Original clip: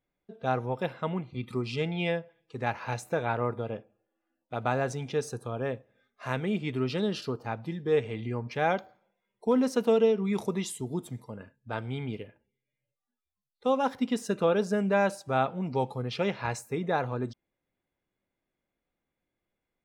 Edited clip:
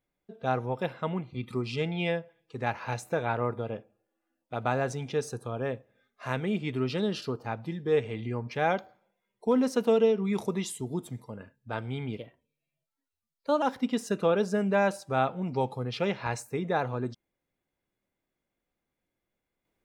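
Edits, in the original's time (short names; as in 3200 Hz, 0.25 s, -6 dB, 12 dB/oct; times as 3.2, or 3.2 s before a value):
12.18–13.81 speed 113%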